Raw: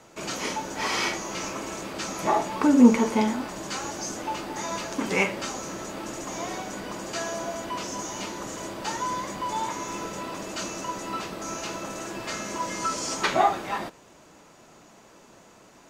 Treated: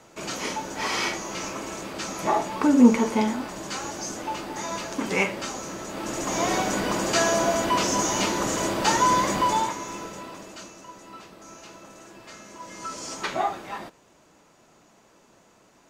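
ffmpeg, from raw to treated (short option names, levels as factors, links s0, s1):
-af "volume=6.31,afade=t=in:st=5.87:d=0.72:silence=0.334965,afade=t=out:st=9.39:d=0.36:silence=0.316228,afade=t=out:st=9.75:d=0.99:silence=0.281838,afade=t=in:st=12.58:d=0.47:silence=0.473151"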